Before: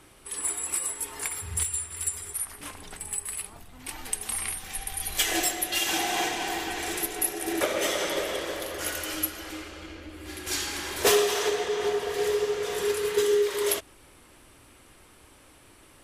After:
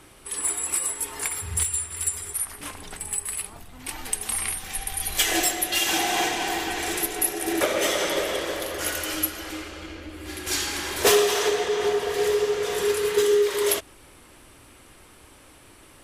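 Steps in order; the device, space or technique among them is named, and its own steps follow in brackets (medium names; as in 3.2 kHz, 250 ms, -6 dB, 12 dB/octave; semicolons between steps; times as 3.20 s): parallel distortion (in parallel at -13 dB: hard clipper -23.5 dBFS, distortion -11 dB); on the sum: trim +2 dB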